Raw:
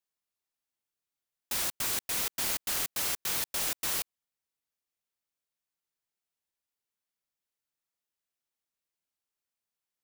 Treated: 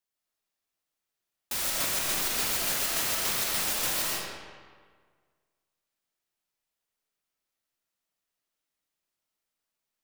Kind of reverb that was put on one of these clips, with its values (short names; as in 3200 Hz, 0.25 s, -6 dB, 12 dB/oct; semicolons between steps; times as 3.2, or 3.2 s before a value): digital reverb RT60 1.7 s, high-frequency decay 0.7×, pre-delay 90 ms, DRR -4 dB